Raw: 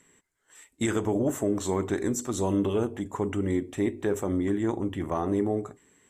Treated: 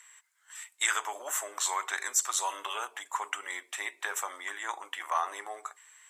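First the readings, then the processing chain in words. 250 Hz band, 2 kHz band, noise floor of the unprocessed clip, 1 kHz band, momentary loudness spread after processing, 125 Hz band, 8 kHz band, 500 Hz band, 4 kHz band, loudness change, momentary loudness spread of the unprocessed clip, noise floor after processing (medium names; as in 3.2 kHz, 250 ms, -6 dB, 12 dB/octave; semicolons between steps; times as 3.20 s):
-33.5 dB, +7.5 dB, -71 dBFS, +3.5 dB, 13 LU, under -40 dB, +7.5 dB, -17.5 dB, +7.5 dB, -4.0 dB, 5 LU, -68 dBFS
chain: high-pass 990 Hz 24 dB/octave; trim +7.5 dB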